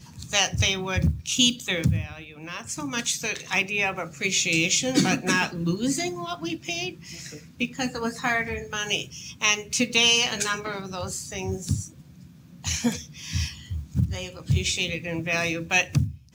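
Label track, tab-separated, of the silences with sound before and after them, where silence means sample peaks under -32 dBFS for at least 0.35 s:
11.870000	12.640000	silence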